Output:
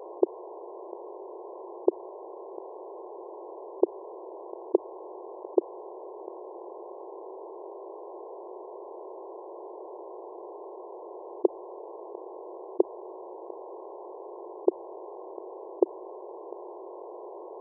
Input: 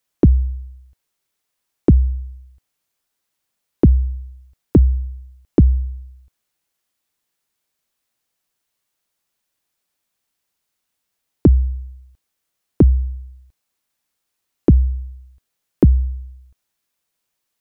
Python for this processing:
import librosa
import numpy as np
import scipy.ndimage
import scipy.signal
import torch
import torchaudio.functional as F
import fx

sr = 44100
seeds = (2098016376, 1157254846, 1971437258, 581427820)

y = fx.bin_compress(x, sr, power=0.6)
y = fx.brickwall_bandpass(y, sr, low_hz=340.0, high_hz=1100.0)
y = fx.env_flatten(y, sr, amount_pct=50)
y = F.gain(torch.from_numpy(y), -2.0).numpy()